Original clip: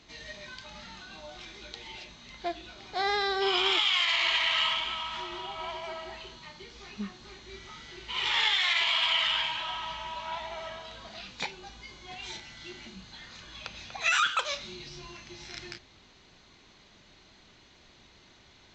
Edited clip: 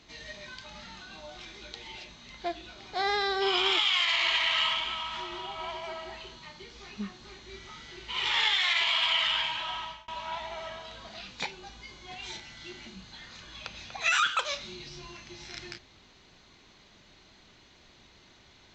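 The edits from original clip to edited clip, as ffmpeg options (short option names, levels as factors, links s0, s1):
-filter_complex "[0:a]asplit=2[s0][s1];[s0]atrim=end=10.08,asetpts=PTS-STARTPTS,afade=t=out:st=9.8:d=0.28[s2];[s1]atrim=start=10.08,asetpts=PTS-STARTPTS,afade=t=in:d=0.004:c=hsin[s3];[s2][s3]concat=n=2:v=0:a=1"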